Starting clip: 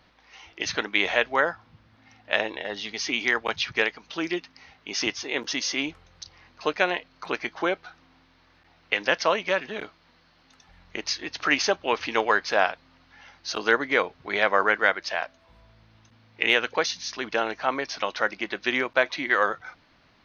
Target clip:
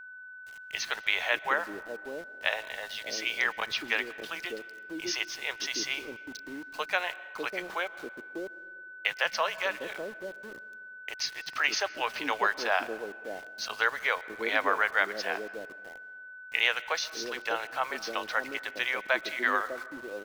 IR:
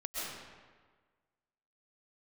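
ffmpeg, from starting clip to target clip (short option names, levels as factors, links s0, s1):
-filter_complex "[0:a]lowshelf=f=220:g=-8,acrossover=split=160|490[s0][s1][s2];[s2]adelay=130[s3];[s1]adelay=730[s4];[s0][s4][s3]amix=inputs=3:normalize=0,aeval=exprs='val(0)*gte(abs(val(0)),0.00891)':c=same,asplit=2[s5][s6];[1:a]atrim=start_sample=2205,highshelf=f=5500:g=-7[s7];[s6][s7]afir=irnorm=-1:irlink=0,volume=0.112[s8];[s5][s8]amix=inputs=2:normalize=0,aeval=exprs='val(0)+0.0112*sin(2*PI*1500*n/s)':c=same,volume=0.596"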